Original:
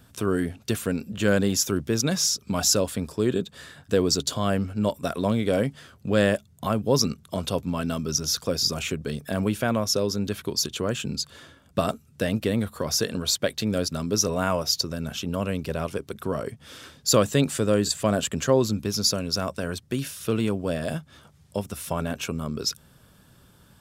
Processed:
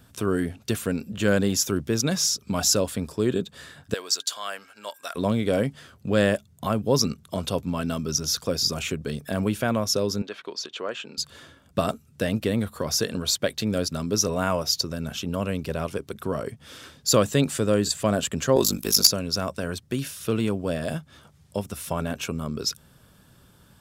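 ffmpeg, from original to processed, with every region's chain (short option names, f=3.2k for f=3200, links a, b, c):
-filter_complex "[0:a]asettb=1/sr,asplit=3[a][b][c];[a]atrim=end=3.944[d];[b]atrim=start=3.94:end=5.15,asetpts=PTS-STARTPTS,afade=t=in:d=0.004:c=qsin,afade=t=out:st=1.206:d=0.004:c=qsin,highpass=1.1k,aeval=exprs='val(0)+0.00112*sin(2*PI*1600*n/s)':c=same[e];[c]atrim=start=5.146[f];[d][e]acrossfade=d=0.004:c1=hsin:c2=qsin[g];[g][f]acrossfade=d=0.004:c1=qsin:c2=hsin,asettb=1/sr,asplit=3[h][i][j];[h]atrim=end=10.224[k];[i]atrim=start=10.22:end=11.18,asetpts=PTS-STARTPTS,afade=t=in:d=0.004:c=qsin,afade=t=out:st=0.956:d=0.004:c=qsin,deesser=0.25,highpass=500,lowpass=3.6k[l];[j]atrim=start=11.176[m];[k][l]acrossfade=d=0.004:c1=hsin:c2=qsin[n];[n][m]acrossfade=d=0.004:c1=qsin:c2=hsin,asettb=1/sr,asplit=3[o][p][q];[o]atrim=end=18.564[r];[p]atrim=start=18.56:end=19.07,asetpts=PTS-STARTPTS,afade=t=in:d=0.004:c=qsin,afade=t=out:st=0.506:d=0.004:c=qsin,aemphasis=mode=production:type=bsi,acontrast=46,aeval=exprs='val(0)*sin(2*PI*25*n/s)':c=same[s];[q]atrim=start=19.066[t];[r][s]acrossfade=d=0.004:c1=hsin:c2=qsin[u];[u][t]acrossfade=d=0.004:c1=qsin:c2=hsin"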